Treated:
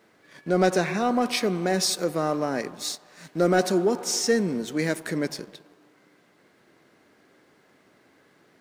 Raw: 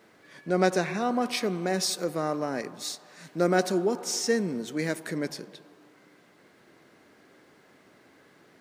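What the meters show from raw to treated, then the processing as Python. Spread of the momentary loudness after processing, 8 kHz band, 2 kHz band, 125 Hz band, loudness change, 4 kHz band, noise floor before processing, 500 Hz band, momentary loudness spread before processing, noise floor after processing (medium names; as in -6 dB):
10 LU, +3.5 dB, +2.5 dB, +3.5 dB, +3.5 dB, +3.5 dB, -59 dBFS, +3.0 dB, 11 LU, -61 dBFS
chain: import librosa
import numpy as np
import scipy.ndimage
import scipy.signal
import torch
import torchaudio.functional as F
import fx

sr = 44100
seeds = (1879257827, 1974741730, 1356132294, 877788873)

y = fx.leveller(x, sr, passes=1)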